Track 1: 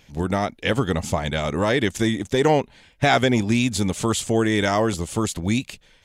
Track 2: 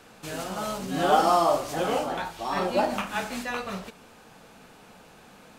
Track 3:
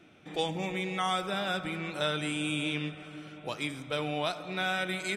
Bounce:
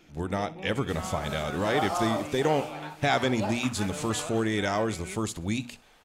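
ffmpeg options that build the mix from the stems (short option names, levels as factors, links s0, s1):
-filter_complex "[0:a]volume=0.447,asplit=3[s0][s1][s2];[s1]volume=0.106[s3];[1:a]highpass=370,adelay=650,volume=0.376[s4];[2:a]lowpass=2400,volume=0.794[s5];[s2]apad=whole_len=227675[s6];[s5][s6]sidechaincompress=threshold=0.0398:ratio=8:attack=7.2:release=906[s7];[s3]aecho=0:1:63|126|189|252:1|0.29|0.0841|0.0244[s8];[s0][s4][s7][s8]amix=inputs=4:normalize=0,bandreject=f=60:t=h:w=6,bandreject=f=120:t=h:w=6,bandreject=f=180:t=h:w=6,bandreject=f=240:t=h:w=6"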